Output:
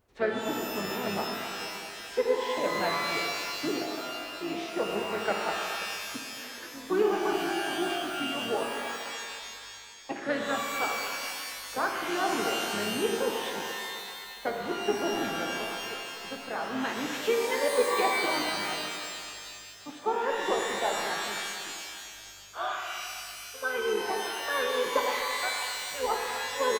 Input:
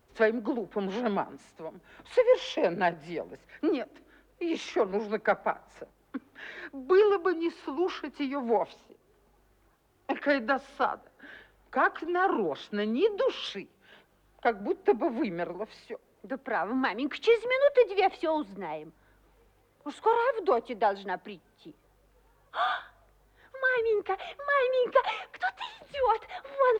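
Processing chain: speakerphone echo 240 ms, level -14 dB; harmony voices -12 st -17 dB, -3 st -9 dB; pitch-shifted reverb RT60 2.2 s, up +12 st, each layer -2 dB, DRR 1.5 dB; trim -6 dB

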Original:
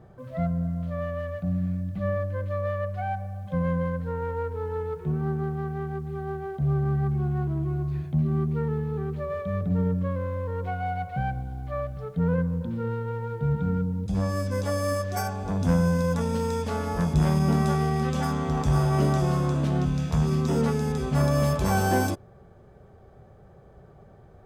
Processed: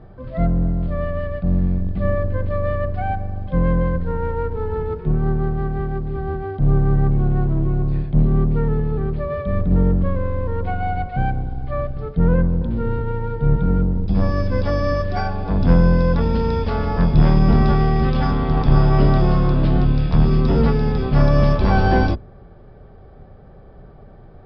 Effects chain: octave divider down 2 oct, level +2 dB; resampled via 11.025 kHz; trim +5.5 dB

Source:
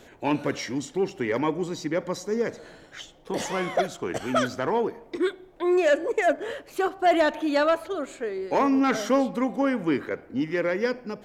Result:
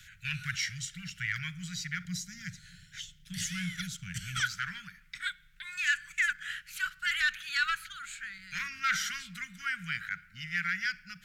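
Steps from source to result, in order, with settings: Chebyshev band-stop 180–1400 Hz, order 5; peaking EQ 320 Hz -11.5 dB 1.9 oct, from 2.05 s 1.1 kHz, from 4.40 s 110 Hz; trim +2.5 dB

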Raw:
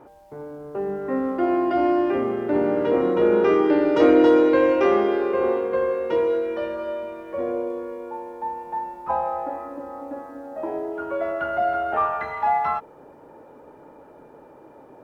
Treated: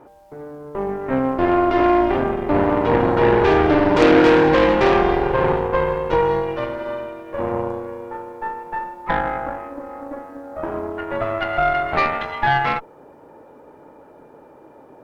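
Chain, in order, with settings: Chebyshev shaper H 8 -14 dB, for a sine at -4.5 dBFS; trim +1.5 dB

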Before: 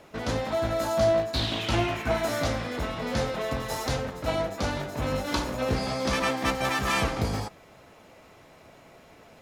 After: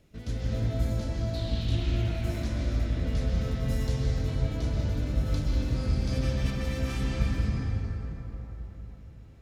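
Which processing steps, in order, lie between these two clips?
amplifier tone stack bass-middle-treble 10-0-1; gain riding 2 s; reverberation RT60 4.4 s, pre-delay 119 ms, DRR -6 dB; trim +8.5 dB

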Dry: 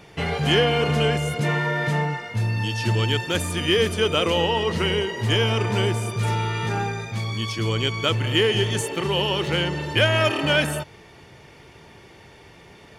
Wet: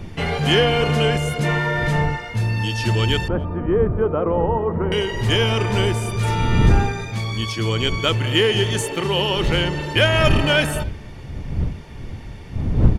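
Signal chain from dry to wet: wind noise 120 Hz -27 dBFS; 3.28–4.92 s: low-pass 1.2 kHz 24 dB/octave; speakerphone echo 280 ms, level -26 dB; trim +2.5 dB

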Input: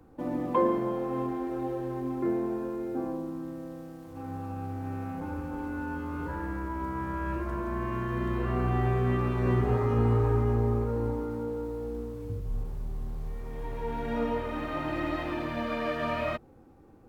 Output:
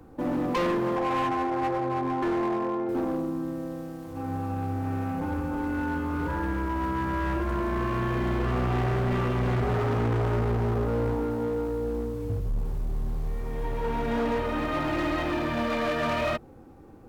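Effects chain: 0.96–2.89 s: cabinet simulation 110–2500 Hz, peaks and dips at 240 Hz -4 dB, 430 Hz -4 dB, 760 Hz +8 dB, 1.1 kHz +9 dB; hard clipper -29.5 dBFS, distortion -7 dB; trim +6 dB

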